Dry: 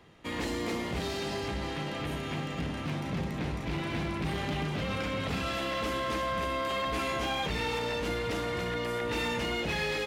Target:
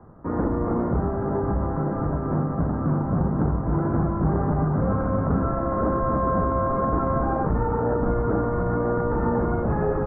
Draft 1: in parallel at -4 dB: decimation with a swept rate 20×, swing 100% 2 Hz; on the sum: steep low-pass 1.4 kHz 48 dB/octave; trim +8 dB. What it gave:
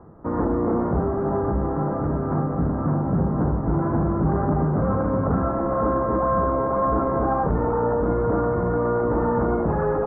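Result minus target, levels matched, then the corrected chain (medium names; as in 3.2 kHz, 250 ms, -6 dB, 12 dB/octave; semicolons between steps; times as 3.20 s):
decimation with a swept rate: distortion -10 dB
in parallel at -4 dB: decimation with a swept rate 68×, swing 100% 2 Hz; on the sum: steep low-pass 1.4 kHz 48 dB/octave; trim +8 dB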